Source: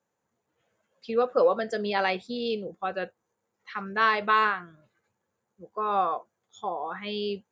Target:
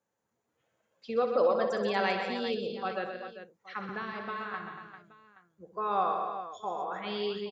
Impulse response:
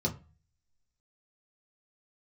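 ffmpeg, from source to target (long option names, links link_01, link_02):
-filter_complex "[0:a]asettb=1/sr,asplit=3[link_01][link_02][link_03];[link_01]atrim=end=3.894[link_04];[link_02]atrim=start=3.89:end=4.54,asetpts=PTS-STARTPTS,afade=type=in:duration=0.004:curve=qsin,afade=type=out:start_time=0.646:duration=0.004:curve=qsin,acrossover=split=260[link_05][link_06];[link_06]acompressor=threshold=-32dB:ratio=10[link_07];[link_05][link_07]amix=inputs=2:normalize=0[link_08];[link_03]atrim=start=4.536[link_09];[link_04][link_08]acrossfade=duration=0.004:curve1=hsin:curve2=qsin[link_10];[link_10][link_09]acrossfade=duration=0.004:curve1=qsin:curve2=hsin,asplit=2[link_11][link_12];[link_12]aecho=0:1:63|128|177|235|396|824:0.282|0.422|0.251|0.316|0.282|0.106[link_13];[link_11][link_13]amix=inputs=2:normalize=0,volume=-4dB"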